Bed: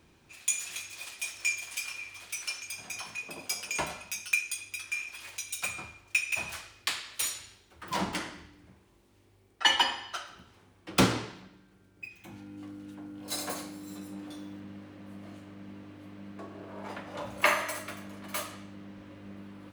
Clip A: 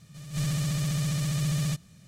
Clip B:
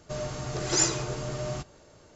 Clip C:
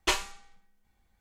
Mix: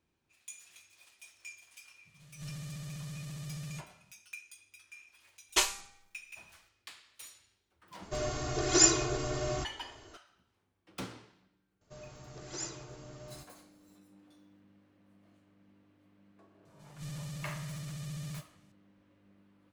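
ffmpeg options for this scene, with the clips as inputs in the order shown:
ffmpeg -i bed.wav -i cue0.wav -i cue1.wav -i cue2.wav -filter_complex "[1:a]asplit=2[link_01][link_02];[2:a]asplit=2[link_03][link_04];[0:a]volume=-18.5dB[link_05];[3:a]bass=frequency=250:gain=-6,treble=frequency=4000:gain=9[link_06];[link_03]aecho=1:1:2.8:0.85[link_07];[link_01]atrim=end=2.07,asetpts=PTS-STARTPTS,volume=-14.5dB,afade=type=in:duration=0.004:curve=hsin,afade=type=out:start_time=2.066:duration=0.004:curve=hsin,adelay=2050[link_08];[link_06]atrim=end=1.2,asetpts=PTS-STARTPTS,volume=-3.5dB,afade=type=in:duration=0.004:curve=hsin,afade=type=out:start_time=1.196:duration=0.004:curve=hsin,adelay=242109S[link_09];[link_07]atrim=end=2.15,asetpts=PTS-STARTPTS,volume=-2dB,afade=type=in:duration=0.004:curve=hsin,afade=type=out:start_time=2.146:duration=0.004:curve=hsin,adelay=353682S[link_10];[link_04]atrim=end=2.15,asetpts=PTS-STARTPTS,volume=-16dB,afade=type=in:duration=0.004:curve=hsin,afade=type=out:start_time=2.146:duration=0.004:curve=hsin,adelay=11810[link_11];[link_02]atrim=end=2.07,asetpts=PTS-STARTPTS,volume=-13.5dB,afade=type=in:duration=0.004:curve=hsin,afade=type=out:start_time=2.066:duration=0.004:curve=hsin,adelay=16650[link_12];[link_05][link_08][link_09][link_10][link_11][link_12]amix=inputs=6:normalize=0" out.wav

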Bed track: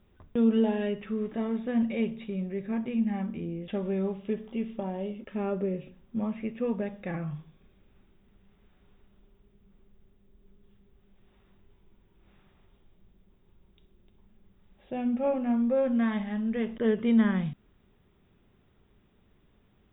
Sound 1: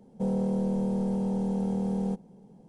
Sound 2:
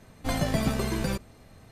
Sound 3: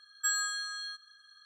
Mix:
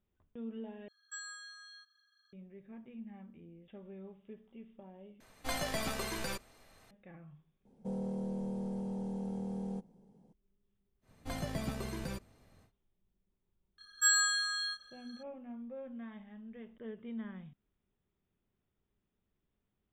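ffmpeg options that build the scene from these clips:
ffmpeg -i bed.wav -i cue0.wav -i cue1.wav -i cue2.wav -filter_complex "[3:a]asplit=2[link_01][link_02];[2:a]asplit=2[link_03][link_04];[0:a]volume=-19.5dB[link_05];[link_01]highpass=300,equalizer=frequency=310:width_type=q:width=4:gain=5,equalizer=frequency=690:width_type=q:width=4:gain=-5,equalizer=frequency=2100:width_type=q:width=4:gain=10,lowpass=frequency=8700:width=0.5412,lowpass=frequency=8700:width=1.3066[link_06];[link_03]equalizer=frequency=110:width=0.31:gain=-14.5[link_07];[link_02]asplit=2[link_08][link_09];[link_09]adelay=28,volume=-3dB[link_10];[link_08][link_10]amix=inputs=2:normalize=0[link_11];[link_05]asplit=3[link_12][link_13][link_14];[link_12]atrim=end=0.884[link_15];[link_06]atrim=end=1.45,asetpts=PTS-STARTPTS,volume=-15dB[link_16];[link_13]atrim=start=2.326:end=5.204[link_17];[link_07]atrim=end=1.71,asetpts=PTS-STARTPTS,volume=-3dB[link_18];[link_14]atrim=start=6.906[link_19];[1:a]atrim=end=2.68,asetpts=PTS-STARTPTS,volume=-10dB,afade=type=in:duration=0.004:curve=hsin,afade=type=out:start_time=2.676:duration=0.004:curve=hsin,adelay=7650[link_20];[link_04]atrim=end=1.71,asetpts=PTS-STARTPTS,volume=-11.5dB,afade=type=in:duration=0.1,afade=type=out:start_time=1.61:duration=0.1,adelay=11010[link_21];[link_11]atrim=end=1.45,asetpts=PTS-STARTPTS,volume=-0.5dB,afade=type=in:duration=0.004:curve=hsin,afade=type=out:start_time=1.446:duration=0.004:curve=hsin,adelay=13780[link_22];[link_15][link_16]acrossfade=duration=0.004:curve1=hsin:curve2=hsin[link_23];[link_23][link_17]acrossfade=duration=0.004:curve1=hsin:curve2=hsin[link_24];[link_24][link_18]acrossfade=duration=0.004:curve1=hsin:curve2=hsin[link_25];[link_25][link_19]acrossfade=duration=0.004:curve1=hsin:curve2=hsin[link_26];[link_26][link_20][link_21][link_22]amix=inputs=4:normalize=0" out.wav

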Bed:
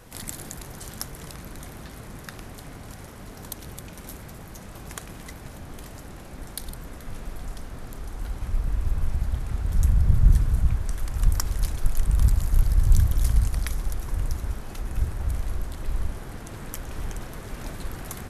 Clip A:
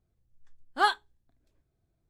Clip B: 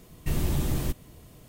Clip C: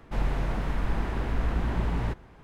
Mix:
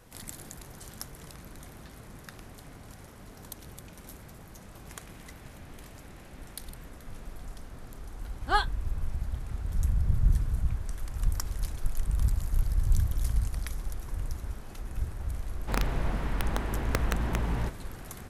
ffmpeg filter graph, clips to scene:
ffmpeg -i bed.wav -i cue0.wav -i cue1.wav -i cue2.wav -filter_complex "[3:a]asplit=2[link_01][link_02];[0:a]volume=-7dB[link_03];[link_01]asuperpass=centerf=3000:order=4:qfactor=1[link_04];[link_02]aeval=exprs='(mod(6.68*val(0)+1,2)-1)/6.68':channel_layout=same[link_05];[link_04]atrim=end=2.43,asetpts=PTS-STARTPTS,volume=-15dB,afade=type=in:duration=0.004:curve=hsin,afade=type=out:start_time=2.426:duration=0.004:curve=hsin,adelay=4750[link_06];[1:a]atrim=end=2.09,asetpts=PTS-STARTPTS,volume=-2dB,afade=type=in:duration=0.004:curve=hsin,afade=type=out:start_time=2.086:duration=0.004:curve=hsin,adelay=7710[link_07];[link_05]atrim=end=2.43,asetpts=PTS-STARTPTS,volume=-2dB,afade=type=in:duration=0.004:curve=hsin,afade=type=out:start_time=2.426:duration=0.004:curve=hsin,adelay=686196S[link_08];[link_03][link_06][link_07][link_08]amix=inputs=4:normalize=0" out.wav

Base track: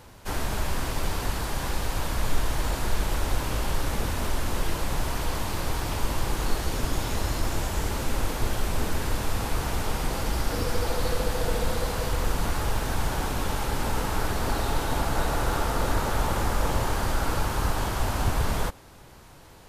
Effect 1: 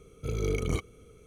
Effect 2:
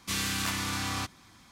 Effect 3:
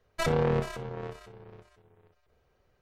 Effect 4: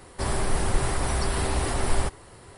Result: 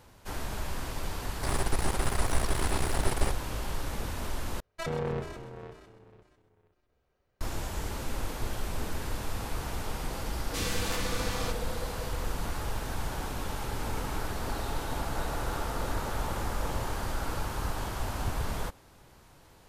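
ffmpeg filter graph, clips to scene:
ffmpeg -i bed.wav -i cue0.wav -i cue1.wav -i cue2.wav -i cue3.wav -filter_complex "[0:a]volume=-7dB[link_01];[4:a]aeval=exprs='max(val(0),0)':channel_layout=same[link_02];[3:a]asplit=6[link_03][link_04][link_05][link_06][link_07][link_08];[link_04]adelay=129,afreqshift=-62,volume=-11dB[link_09];[link_05]adelay=258,afreqshift=-124,volume=-17.6dB[link_10];[link_06]adelay=387,afreqshift=-186,volume=-24.1dB[link_11];[link_07]adelay=516,afreqshift=-248,volume=-30.7dB[link_12];[link_08]adelay=645,afreqshift=-310,volume=-37.2dB[link_13];[link_03][link_09][link_10][link_11][link_12][link_13]amix=inputs=6:normalize=0[link_14];[link_01]asplit=2[link_15][link_16];[link_15]atrim=end=4.604[link_17];[link_14]atrim=end=2.81,asetpts=PTS-STARTPTS,volume=-6.5dB[link_18];[link_16]atrim=start=7.406[link_19];[link_02]atrim=end=2.57,asetpts=PTS-STARTPTS,volume=-1dB,afade=type=in:duration=0.004:curve=hsin,afade=type=out:start_time=2.566:duration=0.004:curve=hsin,adelay=1230[link_20];[2:a]atrim=end=1.51,asetpts=PTS-STARTPTS,volume=-4dB,afade=type=in:duration=0.004:curve=hsin,afade=type=out:start_time=1.506:duration=0.004:curve=hsin,adelay=10460[link_21];[1:a]atrim=end=1.26,asetpts=PTS-STARTPTS,volume=-13dB,afade=type=in:duration=0.004:curve=hsin,afade=type=out:start_time=1.256:duration=0.004:curve=hsin,adelay=13390[link_22];[link_17][link_18]acrossfade=duration=0.004:curve1=hsin:curve2=hsin[link_23];[link_23][link_19]acrossfade=duration=0.004:curve1=hsin:curve2=hsin[link_24];[link_24][link_20][link_21][link_22]amix=inputs=4:normalize=0" out.wav

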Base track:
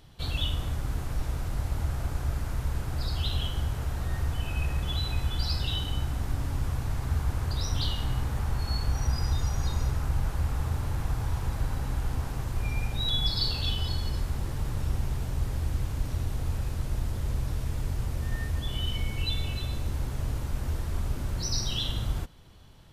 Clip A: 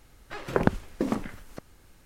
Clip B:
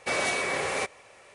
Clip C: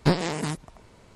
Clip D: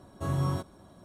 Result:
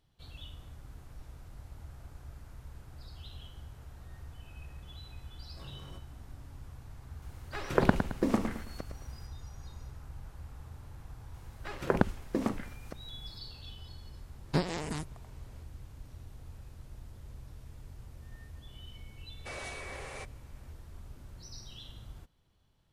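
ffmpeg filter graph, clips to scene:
ffmpeg -i bed.wav -i cue0.wav -i cue1.wav -i cue2.wav -i cue3.wav -filter_complex "[1:a]asplit=2[link_01][link_02];[0:a]volume=-18dB[link_03];[4:a]volume=34.5dB,asoftclip=hard,volume=-34.5dB[link_04];[link_01]aecho=1:1:109|218|327|436:0.398|0.139|0.0488|0.0171[link_05];[link_04]atrim=end=1.04,asetpts=PTS-STARTPTS,volume=-14dB,afade=type=in:duration=0.004:curve=hsin,afade=type=out:start_time=1.036:duration=0.004:curve=hsin,adelay=5360[link_06];[link_05]atrim=end=2.05,asetpts=PTS-STARTPTS,volume=-1dB,afade=type=in:duration=0.004:curve=hsin,afade=type=out:start_time=2.046:duration=0.004:curve=hsin,adelay=318402S[link_07];[link_02]atrim=end=2.05,asetpts=PTS-STARTPTS,volume=-3.5dB,afade=type=in:duration=0.004:curve=hsin,afade=type=out:start_time=2.046:duration=0.004:curve=hsin,adelay=11340[link_08];[3:a]atrim=end=1.15,asetpts=PTS-STARTPTS,volume=-8dB,afade=type=in:duration=0.004:curve=hsin,afade=type=out:start_time=1.146:duration=0.004:curve=hsin,adelay=14480[link_09];[2:a]atrim=end=1.34,asetpts=PTS-STARTPTS,volume=-15dB,afade=type=in:duration=0.004:curve=hsin,afade=type=out:start_time=1.336:duration=0.004:curve=hsin,adelay=19390[link_10];[link_03][link_06][link_07][link_08][link_09][link_10]amix=inputs=6:normalize=0" out.wav

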